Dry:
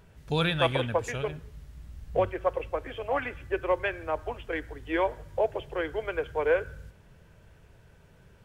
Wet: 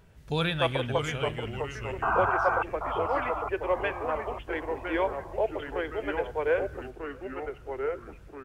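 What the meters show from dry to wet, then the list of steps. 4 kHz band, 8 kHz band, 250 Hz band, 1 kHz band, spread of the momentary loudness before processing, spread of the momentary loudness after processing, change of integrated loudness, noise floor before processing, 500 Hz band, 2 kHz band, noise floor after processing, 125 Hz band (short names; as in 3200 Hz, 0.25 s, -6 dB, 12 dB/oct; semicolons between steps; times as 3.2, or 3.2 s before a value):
-0.5 dB, n/a, +0.5 dB, +4.0 dB, 12 LU, 11 LU, 0.0 dB, -57 dBFS, 0.0 dB, +1.5 dB, -49 dBFS, 0.0 dB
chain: painted sound noise, 2.02–2.63, 640–1600 Hz -25 dBFS; echoes that change speed 0.539 s, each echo -2 st, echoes 3, each echo -6 dB; outdoor echo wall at 110 m, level -27 dB; gain -1.5 dB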